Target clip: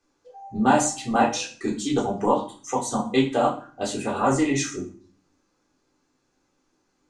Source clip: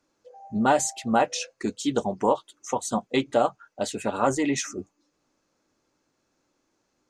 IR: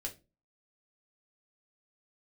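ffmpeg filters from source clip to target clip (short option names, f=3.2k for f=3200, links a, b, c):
-filter_complex "[1:a]atrim=start_sample=2205,asetrate=22932,aresample=44100[a];[0:a][a]afir=irnorm=-1:irlink=0,volume=-1.5dB"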